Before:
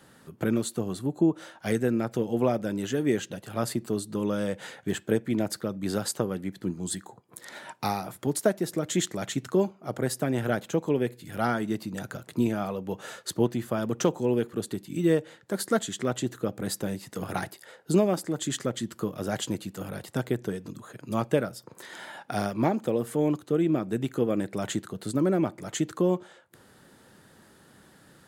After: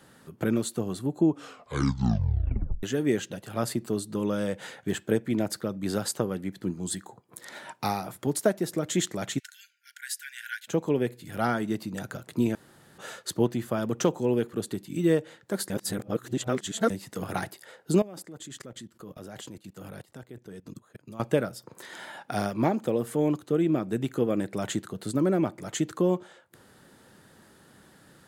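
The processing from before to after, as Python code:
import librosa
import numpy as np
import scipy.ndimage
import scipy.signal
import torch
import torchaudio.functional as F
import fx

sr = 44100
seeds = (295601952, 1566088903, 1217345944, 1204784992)

y = fx.brickwall_highpass(x, sr, low_hz=1400.0, at=(9.38, 10.67), fade=0.02)
y = fx.level_steps(y, sr, step_db=21, at=(17.99, 21.2))
y = fx.edit(y, sr, fx.tape_stop(start_s=1.24, length_s=1.59),
    fx.room_tone_fill(start_s=12.55, length_s=0.43),
    fx.reverse_span(start_s=15.7, length_s=1.2), tone=tone)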